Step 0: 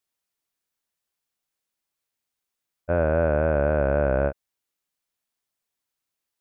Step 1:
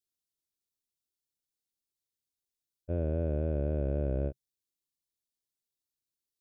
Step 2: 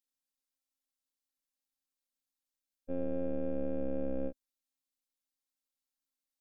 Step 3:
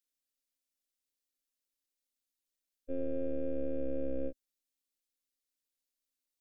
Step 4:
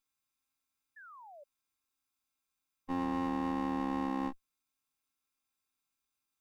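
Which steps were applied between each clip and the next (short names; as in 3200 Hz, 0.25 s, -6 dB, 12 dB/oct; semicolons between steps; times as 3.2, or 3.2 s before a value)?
EQ curve 130 Hz 0 dB, 190 Hz -4 dB, 370 Hz -1 dB, 810 Hz -18 dB, 1300 Hz -24 dB, 2100 Hz -17 dB, 3800 Hz -2 dB; gain -4.5 dB
robotiser 267 Hz
fixed phaser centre 390 Hz, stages 4; gain +1.5 dB
minimum comb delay 0.81 ms; painted sound fall, 0.96–1.44, 550–1800 Hz -58 dBFS; gain +5.5 dB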